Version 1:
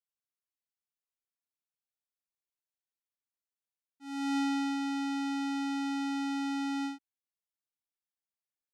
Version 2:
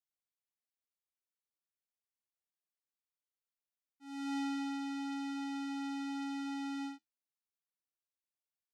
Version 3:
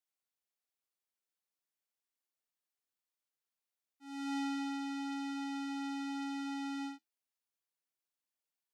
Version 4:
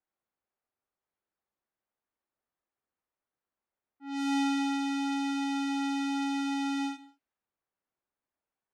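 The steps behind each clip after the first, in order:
flanger 0.91 Hz, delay 9.7 ms, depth 1.7 ms, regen −66%; level −2.5 dB
high-pass filter 210 Hz; level +1 dB
low-pass that shuts in the quiet parts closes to 1,400 Hz, open at −37.5 dBFS; reverb whose tail is shaped and stops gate 220 ms falling, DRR 11 dB; level +8.5 dB

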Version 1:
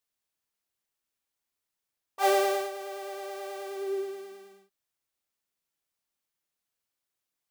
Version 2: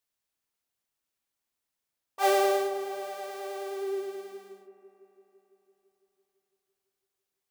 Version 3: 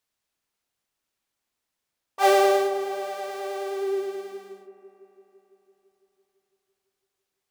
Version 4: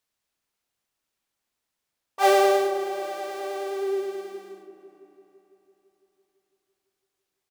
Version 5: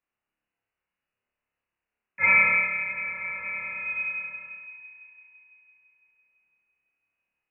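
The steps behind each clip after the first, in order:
delay with a low-pass on its return 168 ms, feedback 74%, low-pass 1,100 Hz, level −9 dB
high-shelf EQ 9,500 Hz −7 dB; level +5.5 dB
echo with shifted repeats 381 ms, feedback 44%, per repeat −31 Hz, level −23 dB
voice inversion scrambler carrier 2,900 Hz; flutter between parallel walls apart 4.9 metres, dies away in 0.68 s; level −4 dB

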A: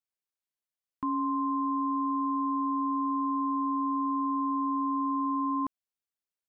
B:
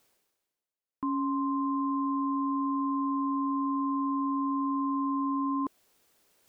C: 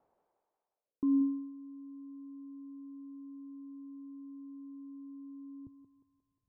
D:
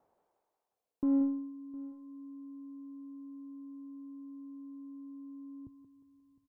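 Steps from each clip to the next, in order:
parametric band 420 Hz +8 dB 1.8 octaves; reversed playback; upward compression, threshold −40 dBFS; reversed playback; level −4.5 dB
feedback echo with a high-pass in the loop 178 ms, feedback 67%, high-pass 490 Hz, level −3.5 dB; low-pass filter sweep 830 Hz → 110 Hz, 0:00.73–0:01.53; level −2.5 dB
one-sided soft clipper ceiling −23 dBFS; single-tap delay 709 ms −20.5 dB; level +1.5 dB

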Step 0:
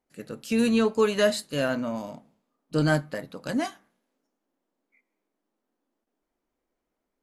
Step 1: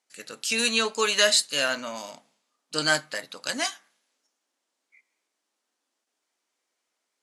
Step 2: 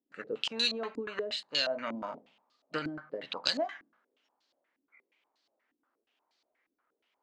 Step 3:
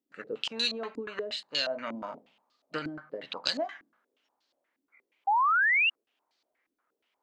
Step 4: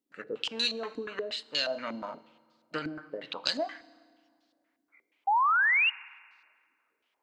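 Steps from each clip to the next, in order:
meter weighting curve ITU-R 468; level +1.5 dB
downward compressor 10 to 1, threshold −31 dBFS, peak gain reduction 16 dB; low-pass on a step sequencer 8.4 Hz 290–4,300 Hz
sound drawn into the spectrogram rise, 0:05.27–0:05.90, 770–2,900 Hz −24 dBFS
convolution reverb RT60 1.9 s, pre-delay 3 ms, DRR 18.5 dB

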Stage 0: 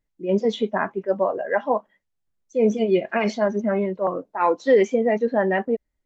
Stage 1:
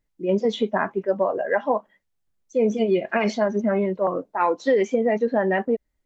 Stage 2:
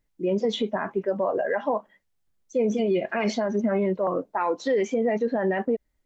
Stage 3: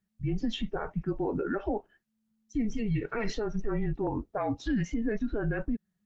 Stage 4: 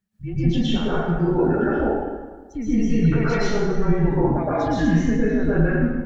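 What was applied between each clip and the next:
downward compressor 3 to 1, threshold −20 dBFS, peak gain reduction 7 dB; level +2.5 dB
brickwall limiter −17.5 dBFS, peak gain reduction 9 dB; level +1.5 dB
frequency shifter −220 Hz; level −5.5 dB
dense smooth reverb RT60 1.4 s, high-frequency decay 0.65×, pre-delay 105 ms, DRR −10 dB

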